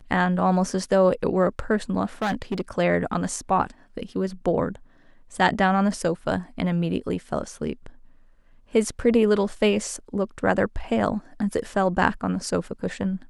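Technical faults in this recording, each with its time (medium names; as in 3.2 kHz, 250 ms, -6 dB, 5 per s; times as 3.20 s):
2.22–2.61 s: clipped -20.5 dBFS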